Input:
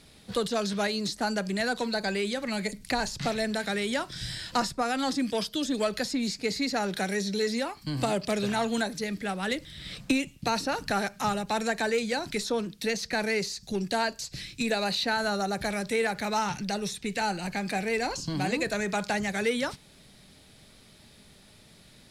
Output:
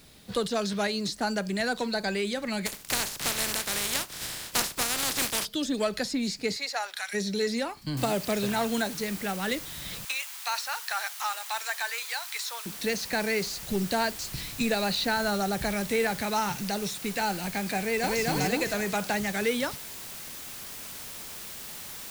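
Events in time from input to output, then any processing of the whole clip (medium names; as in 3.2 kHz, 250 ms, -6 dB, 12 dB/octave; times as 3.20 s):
2.65–5.44 s: spectral contrast reduction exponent 0.23
6.55–7.13 s: high-pass 460 Hz -> 1.2 kHz 24 dB/octave
7.97 s: noise floor step -61 dB -41 dB
10.05–12.66 s: high-pass 890 Hz 24 dB/octave
13.46–16.23 s: bass shelf 130 Hz +8 dB
17.78–18.22 s: echo throw 250 ms, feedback 45%, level -0.5 dB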